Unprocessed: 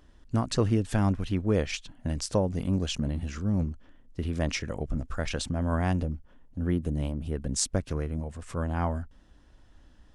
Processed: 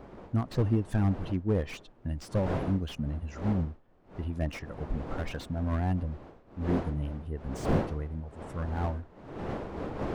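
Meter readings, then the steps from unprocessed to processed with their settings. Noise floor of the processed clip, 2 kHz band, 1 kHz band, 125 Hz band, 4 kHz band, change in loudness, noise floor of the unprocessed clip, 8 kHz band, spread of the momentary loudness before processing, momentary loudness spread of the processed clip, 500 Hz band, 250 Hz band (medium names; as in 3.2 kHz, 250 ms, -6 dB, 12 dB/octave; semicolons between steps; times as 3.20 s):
-56 dBFS, -4.5 dB, -1.5 dB, -1.5 dB, -10.5 dB, -2.5 dB, -57 dBFS, -18.0 dB, 9 LU, 12 LU, -2.5 dB, -2.0 dB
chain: expander on every frequency bin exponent 1.5; wind noise 550 Hz -38 dBFS; slew-rate limiter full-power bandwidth 27 Hz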